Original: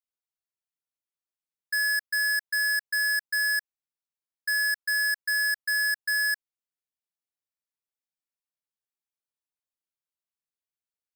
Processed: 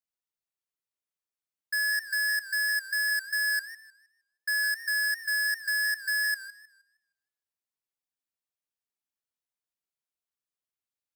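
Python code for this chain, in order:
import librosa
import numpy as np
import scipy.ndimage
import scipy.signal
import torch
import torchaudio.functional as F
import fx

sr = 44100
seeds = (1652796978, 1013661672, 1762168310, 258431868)

y = fx.low_shelf_res(x, sr, hz=260.0, db=-12.0, q=1.5, at=(3.5, 4.63))
y = fx.echo_warbled(y, sr, ms=156, feedback_pct=31, rate_hz=2.8, cents=141, wet_db=-15.5)
y = y * 10.0 ** (-2.0 / 20.0)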